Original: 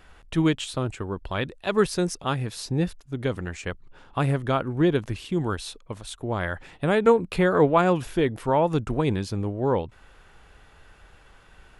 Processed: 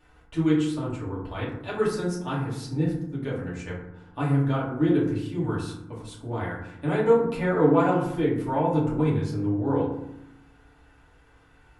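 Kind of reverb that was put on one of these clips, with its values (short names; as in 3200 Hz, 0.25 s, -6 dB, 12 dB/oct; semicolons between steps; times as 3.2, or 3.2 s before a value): FDN reverb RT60 0.82 s, low-frequency decay 1.55×, high-frequency decay 0.4×, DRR -8 dB; gain -13 dB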